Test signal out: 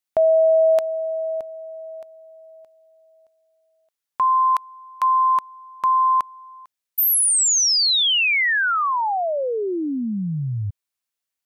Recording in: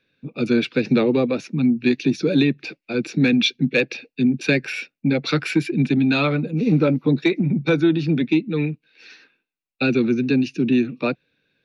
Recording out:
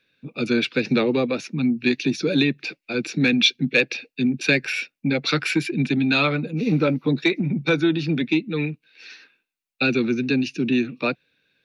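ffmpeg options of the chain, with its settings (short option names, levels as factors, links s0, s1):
-af "tiltshelf=f=970:g=-3.5"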